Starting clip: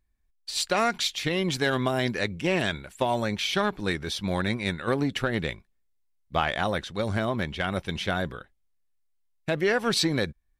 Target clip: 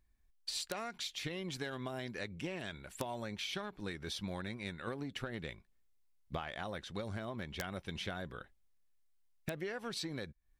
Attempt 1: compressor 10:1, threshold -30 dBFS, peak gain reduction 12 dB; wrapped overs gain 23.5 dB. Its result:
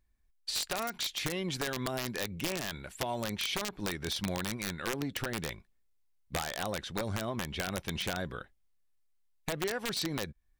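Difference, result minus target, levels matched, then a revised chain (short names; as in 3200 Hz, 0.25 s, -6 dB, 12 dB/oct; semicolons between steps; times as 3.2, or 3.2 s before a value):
compressor: peak gain reduction -7 dB
compressor 10:1, threshold -37.5 dBFS, peak gain reduction 18.5 dB; wrapped overs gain 23.5 dB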